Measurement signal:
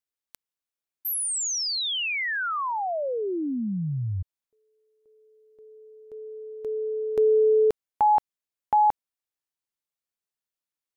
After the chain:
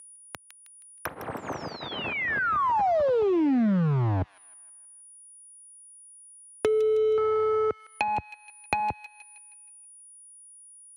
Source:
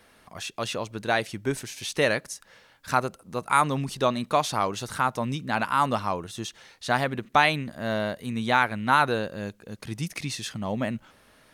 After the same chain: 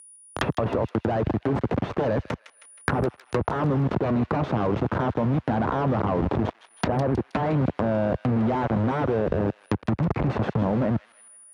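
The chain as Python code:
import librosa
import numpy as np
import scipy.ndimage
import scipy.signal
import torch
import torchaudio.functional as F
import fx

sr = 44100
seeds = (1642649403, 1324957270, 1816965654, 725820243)

p1 = fx.delta_hold(x, sr, step_db=-28.5)
p2 = fx.fold_sine(p1, sr, drive_db=17, ceiling_db=-5.0)
p3 = scipy.signal.sosfilt(scipy.signal.butter(4, 68.0, 'highpass', fs=sr, output='sos'), p2)
p4 = fx.level_steps(p3, sr, step_db=22)
p5 = p4 + 10.0 ** (-50.0 / 20.0) * np.sin(2.0 * np.pi * 9700.0 * np.arange(len(p4)) / sr)
p6 = fx.env_lowpass_down(p5, sr, base_hz=940.0, full_db=-20.5)
p7 = p6 + fx.echo_wet_highpass(p6, sr, ms=158, feedback_pct=34, hz=2400.0, wet_db=-9.0, dry=0)
y = fx.band_squash(p7, sr, depth_pct=70)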